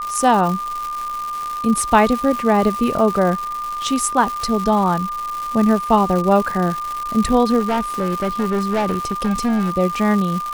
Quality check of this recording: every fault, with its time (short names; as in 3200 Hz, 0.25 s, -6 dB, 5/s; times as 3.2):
crackle 320/s -23 dBFS
tone 1200 Hz -23 dBFS
7.59–9.7 clipped -15.5 dBFS